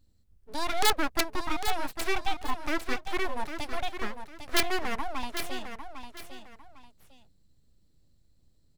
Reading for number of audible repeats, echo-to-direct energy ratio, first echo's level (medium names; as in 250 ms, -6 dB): 2, -8.5 dB, -9.0 dB